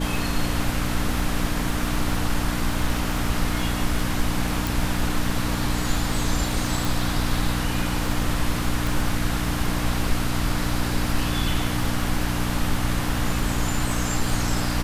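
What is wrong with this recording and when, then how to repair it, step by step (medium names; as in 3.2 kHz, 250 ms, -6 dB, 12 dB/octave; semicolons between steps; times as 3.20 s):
crackle 28 per s -28 dBFS
hum 60 Hz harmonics 5 -28 dBFS
4.67 s: pop
6.85 s: pop
8.87 s: pop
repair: de-click; de-hum 60 Hz, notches 5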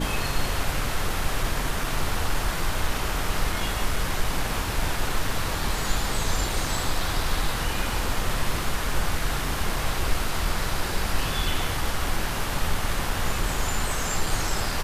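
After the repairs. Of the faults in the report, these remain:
nothing left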